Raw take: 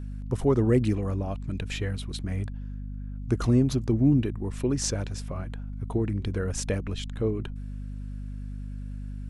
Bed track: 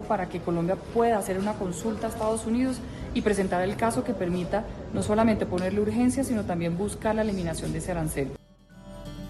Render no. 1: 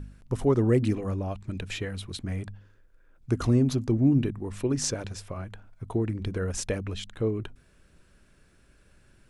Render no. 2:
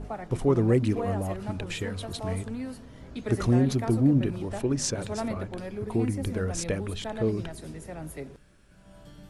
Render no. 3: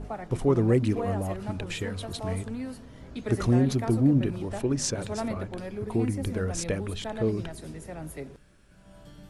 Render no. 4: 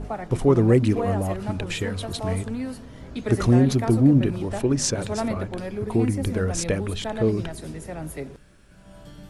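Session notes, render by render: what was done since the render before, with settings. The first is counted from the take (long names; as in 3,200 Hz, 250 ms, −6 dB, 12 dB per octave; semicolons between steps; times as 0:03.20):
hum removal 50 Hz, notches 5
mix in bed track −10 dB
no processing that can be heard
level +5 dB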